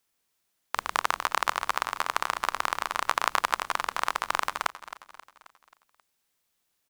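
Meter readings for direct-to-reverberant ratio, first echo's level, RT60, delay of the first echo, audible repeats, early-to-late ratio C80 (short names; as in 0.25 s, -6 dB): none, -15.0 dB, none, 0.267 s, 4, none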